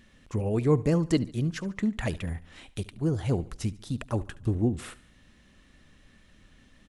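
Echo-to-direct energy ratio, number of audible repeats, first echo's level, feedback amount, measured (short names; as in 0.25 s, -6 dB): -18.5 dB, 3, -19.5 dB, 46%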